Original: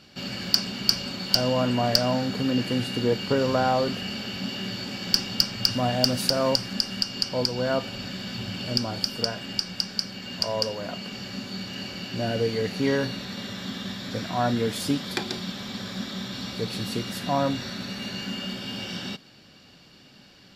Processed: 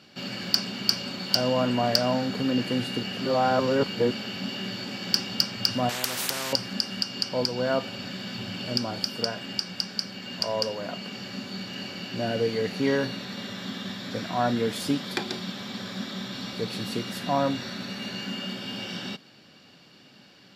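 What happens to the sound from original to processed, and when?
3.03–4.11 s: reverse
5.89–6.53 s: spectrum-flattening compressor 4:1
whole clip: high-pass 120 Hz 12 dB/octave; tone controls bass -1 dB, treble -3 dB

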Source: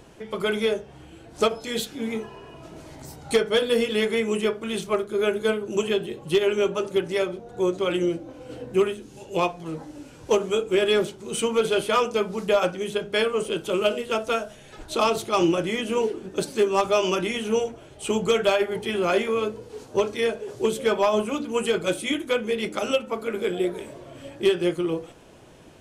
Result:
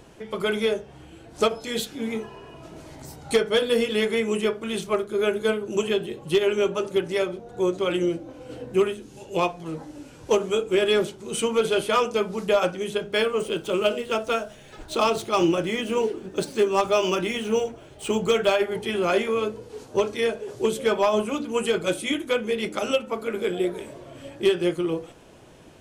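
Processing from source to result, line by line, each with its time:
13.00–18.58 s: median filter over 3 samples

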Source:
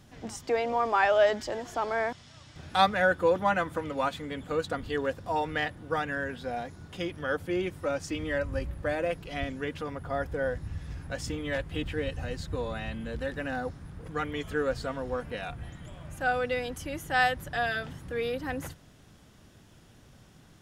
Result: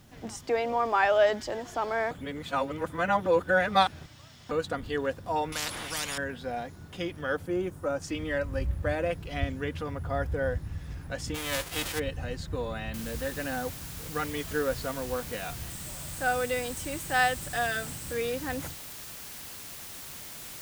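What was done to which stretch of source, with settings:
2.11–4.51 s: reverse
5.52–6.18 s: spectrum-flattening compressor 10:1
7.46–8.02 s: high-order bell 3.1 kHz -9 dB
8.59–10.59 s: peaking EQ 77 Hz +9.5 dB 1.2 oct
11.34–11.98 s: formants flattened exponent 0.3
12.94 s: noise floor step -68 dB -43 dB
15.70–18.13 s: peaking EQ 8.2 kHz +10 dB 0.22 oct

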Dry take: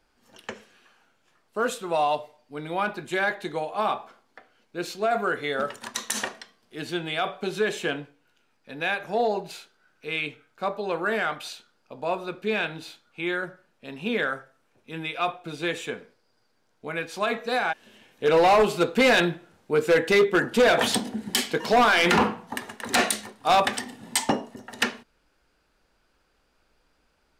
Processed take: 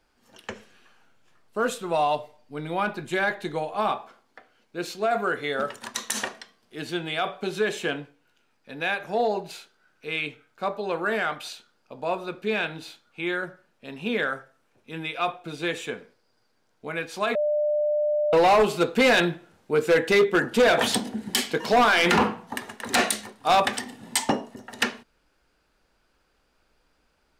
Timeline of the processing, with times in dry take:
0.50–3.93 s: bass shelf 110 Hz +11.5 dB
17.35–18.33 s: bleep 597 Hz -20.5 dBFS

